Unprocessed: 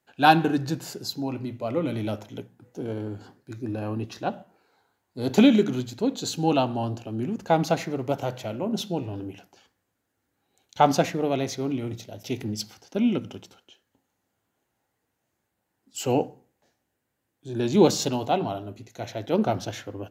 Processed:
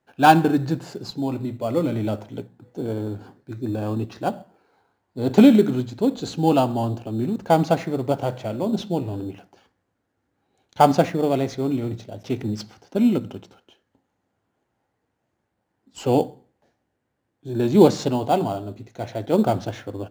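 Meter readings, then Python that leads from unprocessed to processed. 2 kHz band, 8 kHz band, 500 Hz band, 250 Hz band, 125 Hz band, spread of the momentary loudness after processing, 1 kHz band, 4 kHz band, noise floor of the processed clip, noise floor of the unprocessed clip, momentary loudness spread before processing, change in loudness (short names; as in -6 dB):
+1.0 dB, -4.0 dB, +4.5 dB, +4.5 dB, +4.5 dB, 17 LU, +3.5 dB, -1.5 dB, -76 dBFS, -79 dBFS, 17 LU, +4.0 dB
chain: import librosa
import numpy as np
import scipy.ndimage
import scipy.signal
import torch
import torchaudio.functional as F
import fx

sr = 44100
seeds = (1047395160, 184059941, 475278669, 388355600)

p1 = scipy.signal.sosfilt(scipy.signal.butter(2, 10000.0, 'lowpass', fs=sr, output='sos'), x)
p2 = fx.high_shelf(p1, sr, hz=3800.0, db=-11.5)
p3 = fx.sample_hold(p2, sr, seeds[0], rate_hz=3900.0, jitter_pct=0)
p4 = p2 + (p3 * 10.0 ** (-11.0 / 20.0))
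y = p4 * 10.0 ** (2.5 / 20.0)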